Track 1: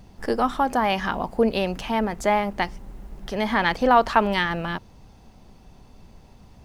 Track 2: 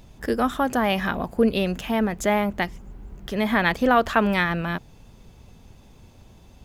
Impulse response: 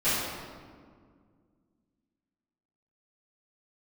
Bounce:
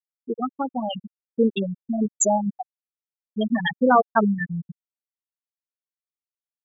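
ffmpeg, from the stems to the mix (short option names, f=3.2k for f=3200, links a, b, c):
-filter_complex "[0:a]volume=-16dB[a];[1:a]aexciter=amount=6:drive=6:freq=3.2k,volume=-3.5dB[b];[a][b]amix=inputs=2:normalize=0,afftfilt=real='re*gte(hypot(re,im),0.398)':imag='im*gte(hypot(re,im),0.398)':win_size=1024:overlap=0.75,dynaudnorm=f=250:g=13:m=5dB"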